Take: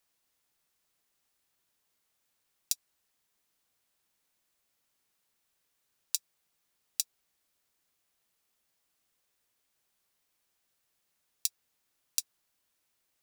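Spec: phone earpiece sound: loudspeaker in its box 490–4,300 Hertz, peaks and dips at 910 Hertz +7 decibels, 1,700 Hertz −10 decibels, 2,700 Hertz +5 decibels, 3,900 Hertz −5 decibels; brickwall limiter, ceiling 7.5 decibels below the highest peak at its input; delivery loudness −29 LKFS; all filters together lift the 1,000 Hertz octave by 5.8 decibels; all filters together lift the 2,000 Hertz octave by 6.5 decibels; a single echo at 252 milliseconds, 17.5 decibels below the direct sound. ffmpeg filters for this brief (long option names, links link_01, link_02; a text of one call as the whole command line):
ffmpeg -i in.wav -af "equalizer=frequency=1000:width_type=o:gain=3,equalizer=frequency=2000:width_type=o:gain=5.5,alimiter=limit=-11dB:level=0:latency=1,highpass=490,equalizer=frequency=910:width_type=q:width=4:gain=7,equalizer=frequency=1700:width_type=q:width=4:gain=-10,equalizer=frequency=2700:width_type=q:width=4:gain=5,equalizer=frequency=3900:width_type=q:width=4:gain=-5,lowpass=frequency=4300:width=0.5412,lowpass=frequency=4300:width=1.3066,aecho=1:1:252:0.133,volume=26.5dB" out.wav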